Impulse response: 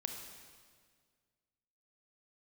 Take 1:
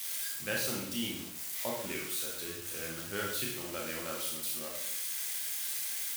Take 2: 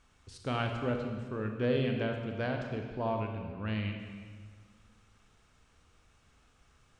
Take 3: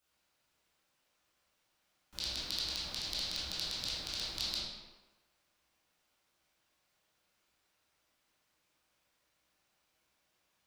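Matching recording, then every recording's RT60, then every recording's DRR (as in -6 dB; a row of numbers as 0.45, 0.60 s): 2; 0.70, 1.8, 1.1 s; -2.5, 3.5, -11.0 dB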